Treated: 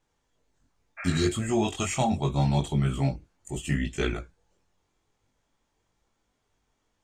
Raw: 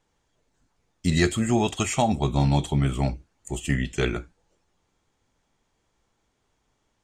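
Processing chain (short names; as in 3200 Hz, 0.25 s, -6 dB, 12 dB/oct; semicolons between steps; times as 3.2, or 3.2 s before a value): chorus voices 2, 0.76 Hz, delay 21 ms, depth 2.1 ms; spectral repair 1–1.24, 520–2700 Hz after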